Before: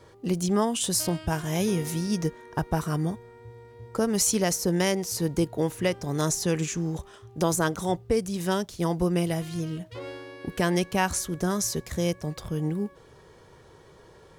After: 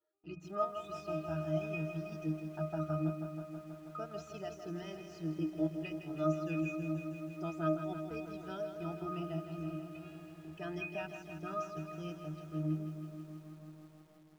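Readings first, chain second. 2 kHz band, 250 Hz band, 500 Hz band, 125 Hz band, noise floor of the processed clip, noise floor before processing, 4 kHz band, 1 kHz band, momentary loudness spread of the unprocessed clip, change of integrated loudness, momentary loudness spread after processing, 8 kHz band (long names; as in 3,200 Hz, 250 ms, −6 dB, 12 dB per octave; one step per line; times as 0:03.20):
−13.0 dB, −11.0 dB, −11.0 dB, −11.0 dB, −57 dBFS, −53 dBFS, −21.5 dB, −11.0 dB, 9 LU, −12.0 dB, 12 LU, below −30 dB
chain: meter weighting curve ITU-R 468
spectral peaks only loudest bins 64
leveller curve on the samples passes 3
mains-hum notches 60/120/180/240 Hz
resonances in every octave D#, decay 0.41 s
transient designer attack −3 dB, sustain −7 dB
high-frequency loss of the air 93 metres
feedback echo with a low-pass in the loop 512 ms, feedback 77%, low-pass 1,000 Hz, level −22.5 dB
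feedback echo at a low word length 161 ms, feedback 80%, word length 11 bits, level −9 dB
level +3.5 dB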